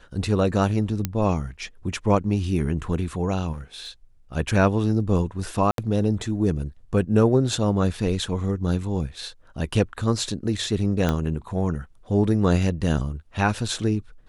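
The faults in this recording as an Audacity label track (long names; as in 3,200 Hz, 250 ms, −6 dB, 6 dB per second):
1.050000	1.050000	click −9 dBFS
3.520000	3.890000	clipping −30 dBFS
5.710000	5.780000	drop-out 72 ms
11.090000	11.090000	click −10 dBFS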